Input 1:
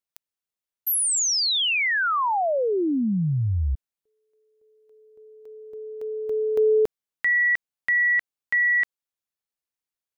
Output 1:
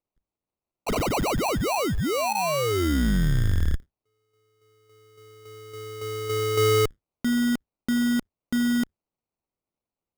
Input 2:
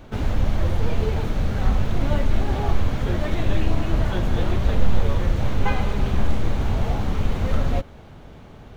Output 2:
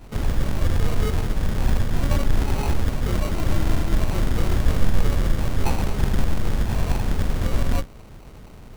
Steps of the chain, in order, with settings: octaver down 2 oct, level +2 dB; sample-rate reducer 1700 Hz, jitter 0%; gain -2 dB

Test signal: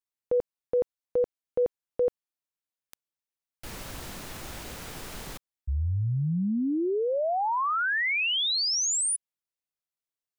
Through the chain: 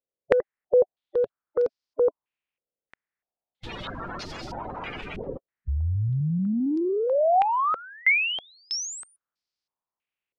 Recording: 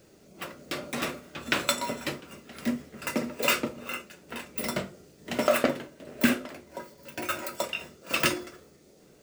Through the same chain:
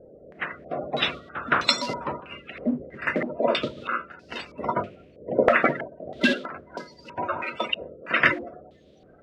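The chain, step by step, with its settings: bin magnitudes rounded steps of 30 dB; in parallel at -9 dB: soft clip -18 dBFS; on the sum: wow and flutter 26 cents; stepped low-pass 3.1 Hz 520–4900 Hz

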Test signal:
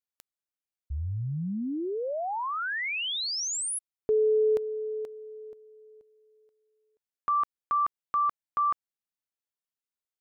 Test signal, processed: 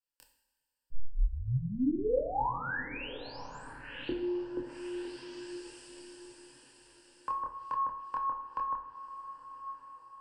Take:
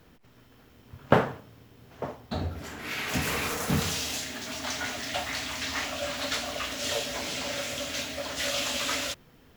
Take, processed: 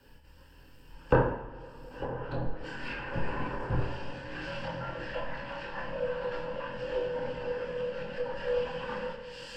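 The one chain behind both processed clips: ripple EQ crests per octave 1.3, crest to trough 12 dB; diffused feedback echo 1.07 s, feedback 41%, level -14 dB; treble ducked by the level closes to 1200 Hz, closed at -28 dBFS; chorus voices 6, 0.39 Hz, delay 26 ms, depth 2.1 ms; frequency shift -77 Hz; two-slope reverb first 0.69 s, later 3.3 s, from -16 dB, DRR 3.5 dB

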